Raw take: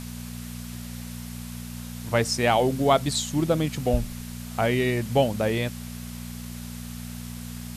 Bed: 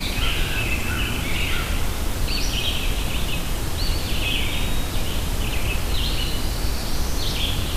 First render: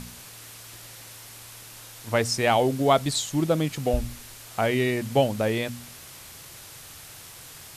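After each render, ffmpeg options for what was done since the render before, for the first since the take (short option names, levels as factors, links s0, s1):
-af "bandreject=f=60:t=h:w=4,bandreject=f=120:t=h:w=4,bandreject=f=180:t=h:w=4,bandreject=f=240:t=h:w=4"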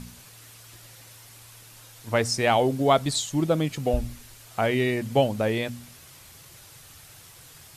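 -af "afftdn=nr=6:nf=-45"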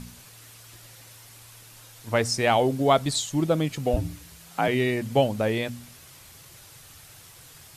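-filter_complex "[0:a]asettb=1/sr,asplit=3[s0][s1][s2];[s0]atrim=end=3.964[s3];[s1]atrim=start=3.96:end=4.68,asetpts=PTS-STARTPTS,afade=t=in:d=0.004:c=qsin,afade=t=out:st=0.716:d=0.004:c=qsin,afreqshift=53[s4];[s2]atrim=start=4.676[s5];[s3][s4]acrossfade=d=0.004:c1=hsin:c2=qsin[s6];[s6][s5]acrossfade=d=0.004:c1=qsin:c2=hsin"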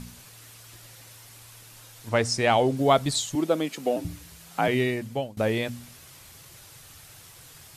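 -filter_complex "[0:a]asettb=1/sr,asplit=3[s0][s1][s2];[s0]atrim=end=2.094[s3];[s1]atrim=start=2.09:end=2.77,asetpts=PTS-STARTPTS,afade=t=in:d=0.004:c=qsin,afade=t=out:st=0.676:d=0.004:c=qsin,lowpass=9700[s4];[s2]atrim=start=2.766[s5];[s3][s4]acrossfade=d=0.004:c1=hsin:c2=qsin[s6];[s6][s5]acrossfade=d=0.004:c1=qsin:c2=hsin,asettb=1/sr,asplit=3[s7][s8][s9];[s7]atrim=end=3.354[s10];[s8]atrim=start=3.35:end=4.05,asetpts=PTS-STARTPTS,afade=t=in:d=0.004:c=qsin,afade=t=out:st=0.696:d=0.004:c=qsin,highpass=f=220:w=0.5412,highpass=f=220:w=1.3066[s11];[s9]atrim=start=4.046[s12];[s10][s11]acrossfade=d=0.004:c1=hsin:c2=qsin[s13];[s13][s12]acrossfade=d=0.004:c1=qsin:c2=hsin,asplit=2[s14][s15];[s14]atrim=end=5.37,asetpts=PTS-STARTPTS,afade=t=out:st=4.79:d=0.58:silence=0.0841395[s16];[s15]atrim=start=5.37,asetpts=PTS-STARTPTS,afade=t=in:d=0.004:c=hsin:silence=0.0841395[s17];[s16][s17]concat=n=2:v=0:a=1"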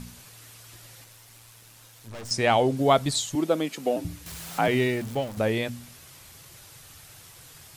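-filter_complex "[0:a]asettb=1/sr,asplit=3[s0][s1][s2];[s0]atrim=end=1.044[s3];[s1]atrim=start=1.04:end=2.31,asetpts=PTS-STARTPTS,afade=t=in:d=0.004:c=qsin,afade=t=out:st=1.266:d=0.004:c=qsin,aeval=exprs='(tanh(79.4*val(0)+0.6)-tanh(0.6))/79.4':c=same[s4];[s2]atrim=start=2.306[s5];[s3][s4]acrossfade=d=0.004:c1=hsin:c2=qsin[s6];[s6][s5]acrossfade=d=0.004:c1=qsin:c2=hsin,asettb=1/sr,asplit=3[s7][s8][s9];[s7]atrim=end=4.264[s10];[s8]atrim=start=4.26:end=5.39,asetpts=PTS-STARTPTS,afade=t=in:d=0.004:c=qsin,afade=t=out:st=1.126:d=0.004:c=qsin,aeval=exprs='val(0)+0.5*0.015*sgn(val(0))':c=same[s11];[s9]atrim=start=5.386[s12];[s10][s11]acrossfade=d=0.004:c1=hsin:c2=qsin[s13];[s13][s12]acrossfade=d=0.004:c1=qsin:c2=hsin"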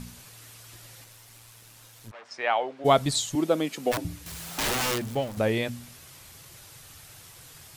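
-filter_complex "[0:a]asplit=3[s0][s1][s2];[s0]afade=t=out:st=2.1:d=0.02[s3];[s1]highpass=770,lowpass=2300,afade=t=in:st=2.1:d=0.02,afade=t=out:st=2.84:d=0.02[s4];[s2]afade=t=in:st=2.84:d=0.02[s5];[s3][s4][s5]amix=inputs=3:normalize=0,asplit=3[s6][s7][s8];[s6]afade=t=out:st=3.91:d=0.02[s9];[s7]aeval=exprs='(mod(13.3*val(0)+1,2)-1)/13.3':c=same,afade=t=in:st=3.91:d=0.02,afade=t=out:st=4.98:d=0.02[s10];[s8]afade=t=in:st=4.98:d=0.02[s11];[s9][s10][s11]amix=inputs=3:normalize=0"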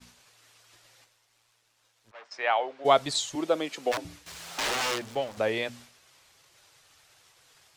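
-filter_complex "[0:a]acrossover=split=360 7700:gain=0.224 1 0.224[s0][s1][s2];[s0][s1][s2]amix=inputs=3:normalize=0,agate=range=0.0224:threshold=0.00562:ratio=3:detection=peak"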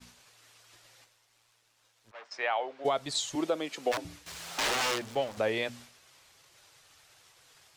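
-af "alimiter=limit=0.126:level=0:latency=1:release=381"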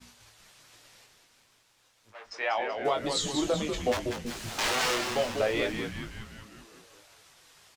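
-filter_complex "[0:a]asplit=2[s0][s1];[s1]adelay=20,volume=0.531[s2];[s0][s2]amix=inputs=2:normalize=0,asplit=9[s3][s4][s5][s6][s7][s8][s9][s10][s11];[s4]adelay=191,afreqshift=-130,volume=0.501[s12];[s5]adelay=382,afreqshift=-260,volume=0.305[s13];[s6]adelay=573,afreqshift=-390,volume=0.186[s14];[s7]adelay=764,afreqshift=-520,volume=0.114[s15];[s8]adelay=955,afreqshift=-650,volume=0.0692[s16];[s9]adelay=1146,afreqshift=-780,volume=0.0422[s17];[s10]adelay=1337,afreqshift=-910,volume=0.0257[s18];[s11]adelay=1528,afreqshift=-1040,volume=0.0157[s19];[s3][s12][s13][s14][s15][s16][s17][s18][s19]amix=inputs=9:normalize=0"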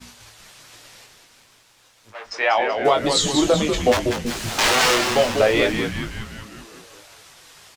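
-af "volume=3.35"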